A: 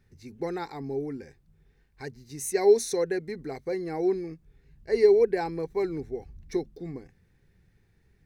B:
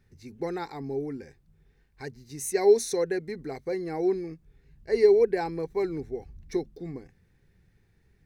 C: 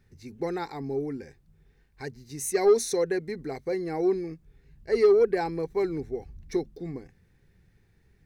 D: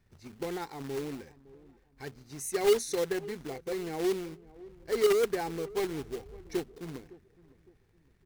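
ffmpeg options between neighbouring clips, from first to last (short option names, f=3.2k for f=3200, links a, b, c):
-af anull
-af "asoftclip=type=tanh:threshold=-13.5dB,volume=1.5dB"
-filter_complex "[0:a]acrossover=split=1400[a][b];[a]acrusher=bits=2:mode=log:mix=0:aa=0.000001[c];[c][b]amix=inputs=2:normalize=0,asplit=2[d][e];[e]adelay=560,lowpass=f=910:p=1,volume=-19dB,asplit=2[f][g];[g]adelay=560,lowpass=f=910:p=1,volume=0.38,asplit=2[h][i];[i]adelay=560,lowpass=f=910:p=1,volume=0.38[j];[d][f][h][j]amix=inputs=4:normalize=0,volume=-5.5dB"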